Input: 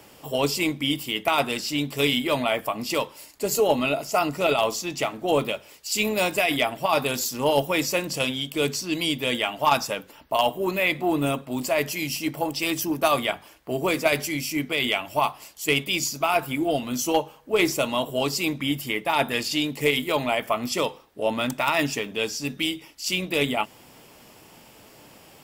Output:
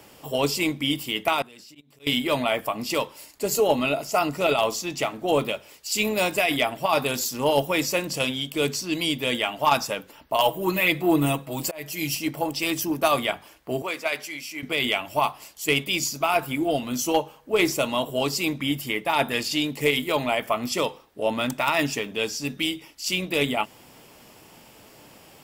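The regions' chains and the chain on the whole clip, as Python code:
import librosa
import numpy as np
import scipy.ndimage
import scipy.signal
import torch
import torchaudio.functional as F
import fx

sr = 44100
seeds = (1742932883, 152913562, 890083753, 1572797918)

y = fx.chain(x, sr, fx.level_steps(step_db=24),
    fx.highpass(hz=46.0, slope=12),
    fx.auto_swell(attack_ms=505.0), at=(1.33, 2.07))
y = fx.chain(y, sr, fx.auto_swell(attack_ms=446.0),
    fx.high_shelf(hz=11000.0, db=7.0),
    fx.comb(ms=6.2, depth=0.71), at=(10.4, 12.15))
y = fx.chain(y, sr, fx.highpass(hz=1200.0, slope=6),
    fx.high_shelf(hz=4600.0, db=-10.0), at=(13.82, 14.63))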